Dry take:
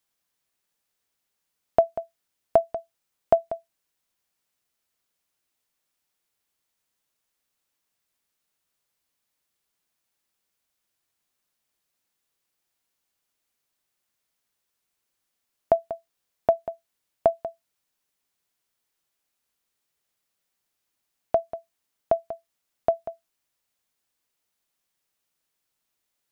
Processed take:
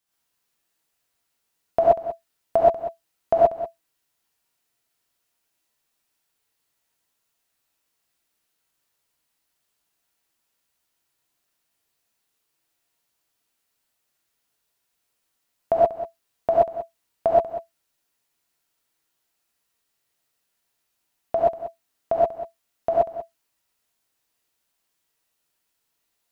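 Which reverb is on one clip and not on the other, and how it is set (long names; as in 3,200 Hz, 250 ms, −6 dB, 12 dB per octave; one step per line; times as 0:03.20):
reverb whose tail is shaped and stops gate 150 ms rising, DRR −6.5 dB
level −3 dB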